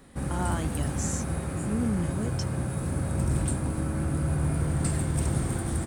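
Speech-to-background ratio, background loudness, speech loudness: −4.5 dB, −29.5 LKFS, −34.0 LKFS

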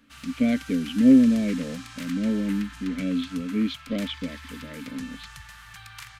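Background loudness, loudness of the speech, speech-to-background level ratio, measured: −42.0 LKFS, −24.0 LKFS, 18.0 dB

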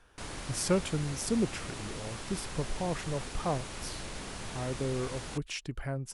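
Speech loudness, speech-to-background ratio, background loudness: −35.0 LKFS, 6.0 dB, −41.0 LKFS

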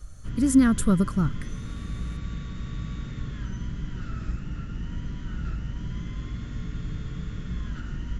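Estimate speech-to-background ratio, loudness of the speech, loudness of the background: 13.0 dB, −22.5 LKFS, −35.5 LKFS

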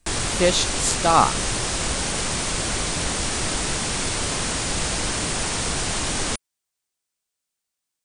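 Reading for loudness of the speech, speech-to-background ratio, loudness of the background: −20.5 LKFS, 3.0 dB, −23.5 LKFS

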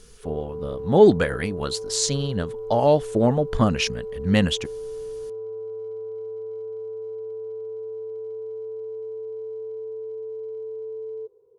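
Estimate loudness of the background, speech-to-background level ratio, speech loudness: −34.0 LKFS, 12.0 dB, −22.0 LKFS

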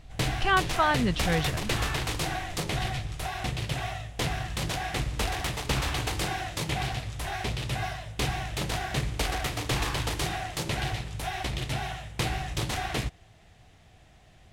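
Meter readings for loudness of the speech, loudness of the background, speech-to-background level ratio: −27.5 LKFS, −31.0 LKFS, 3.5 dB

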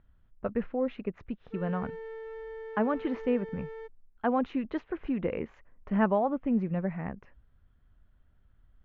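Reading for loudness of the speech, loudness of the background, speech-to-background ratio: −32.0 LKFS, −42.5 LKFS, 10.5 dB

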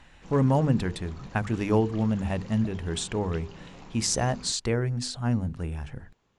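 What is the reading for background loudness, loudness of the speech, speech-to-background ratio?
−47.0 LKFS, −27.5 LKFS, 19.5 dB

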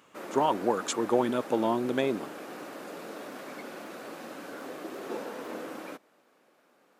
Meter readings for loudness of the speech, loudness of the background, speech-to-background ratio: −28.5 LKFS, −41.0 LKFS, 12.5 dB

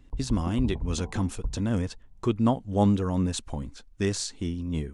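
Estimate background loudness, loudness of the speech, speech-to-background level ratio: −38.0 LKFS, −28.5 LKFS, 9.5 dB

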